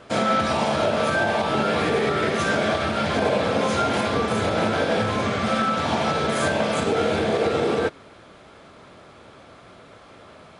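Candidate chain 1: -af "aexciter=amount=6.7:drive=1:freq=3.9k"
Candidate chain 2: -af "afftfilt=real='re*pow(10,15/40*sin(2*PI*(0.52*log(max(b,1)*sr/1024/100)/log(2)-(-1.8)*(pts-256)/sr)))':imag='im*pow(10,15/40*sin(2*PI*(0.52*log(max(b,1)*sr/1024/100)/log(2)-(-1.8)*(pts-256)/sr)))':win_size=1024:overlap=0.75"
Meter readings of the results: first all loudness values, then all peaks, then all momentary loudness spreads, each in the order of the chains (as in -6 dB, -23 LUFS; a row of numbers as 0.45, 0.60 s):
-20.5, -19.5 LUFS; -6.5, -5.0 dBFS; 2, 2 LU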